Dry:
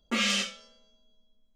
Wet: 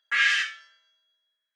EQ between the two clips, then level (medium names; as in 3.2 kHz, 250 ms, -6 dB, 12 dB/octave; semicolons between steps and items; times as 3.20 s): resonant high-pass 1.7 kHz, resonance Q 9.7; treble shelf 6.1 kHz -11.5 dB; 0.0 dB